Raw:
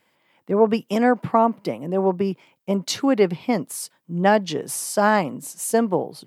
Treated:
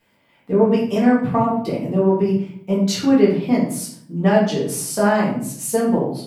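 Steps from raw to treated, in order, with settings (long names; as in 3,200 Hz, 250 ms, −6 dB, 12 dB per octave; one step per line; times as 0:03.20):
low-shelf EQ 170 Hz +6.5 dB
in parallel at +1 dB: downward compressor, threshold −23 dBFS, peak gain reduction 12.5 dB
on the sum: convolution reverb RT60 0.60 s, pre-delay 4 ms, DRR −6.5 dB
level −10.5 dB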